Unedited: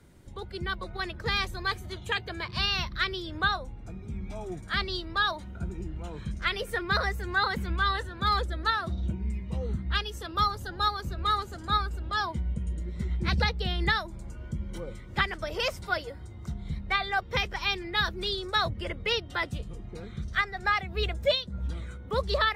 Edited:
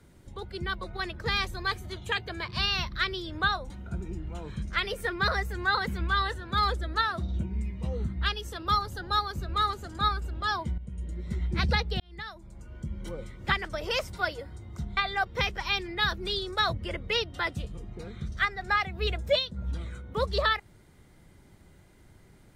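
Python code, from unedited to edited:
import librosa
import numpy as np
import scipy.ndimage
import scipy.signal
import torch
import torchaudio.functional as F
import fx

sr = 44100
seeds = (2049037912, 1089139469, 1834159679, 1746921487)

y = fx.edit(x, sr, fx.cut(start_s=3.7, length_s=1.69),
    fx.fade_in_from(start_s=12.47, length_s=0.62, curve='qsin', floor_db=-14.0),
    fx.fade_in_span(start_s=13.69, length_s=1.11),
    fx.cut(start_s=16.66, length_s=0.27), tone=tone)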